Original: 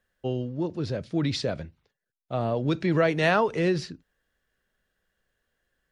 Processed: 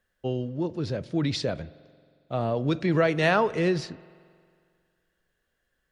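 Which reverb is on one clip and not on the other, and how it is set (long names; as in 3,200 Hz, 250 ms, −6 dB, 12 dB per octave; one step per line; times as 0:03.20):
spring reverb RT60 2.1 s, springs 45 ms, chirp 50 ms, DRR 19 dB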